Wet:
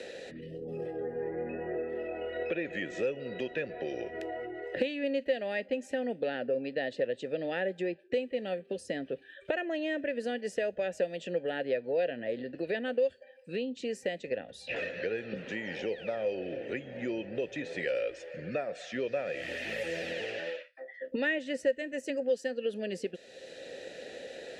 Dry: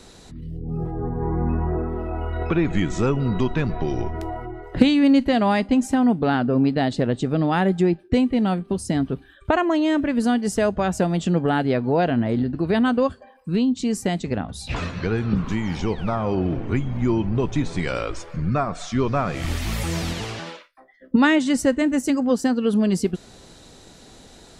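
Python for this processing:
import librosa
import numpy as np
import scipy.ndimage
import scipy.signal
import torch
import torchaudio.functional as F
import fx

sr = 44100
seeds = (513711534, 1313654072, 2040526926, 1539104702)

y = fx.vowel_filter(x, sr, vowel='e')
y = fx.high_shelf(y, sr, hz=3100.0, db=11.0)
y = fx.band_squash(y, sr, depth_pct=70)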